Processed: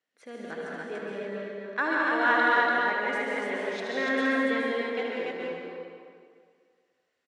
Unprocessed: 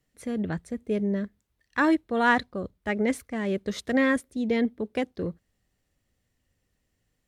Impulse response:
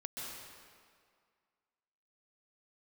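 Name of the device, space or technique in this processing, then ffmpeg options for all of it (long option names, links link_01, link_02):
station announcement: -filter_complex "[0:a]highpass=490,lowpass=4800,equalizer=frequency=1500:width_type=o:width=0.26:gain=4.5,aecho=1:1:75.8|288.6:0.501|0.794[link_01];[1:a]atrim=start_sample=2205[link_02];[link_01][link_02]afir=irnorm=-1:irlink=0"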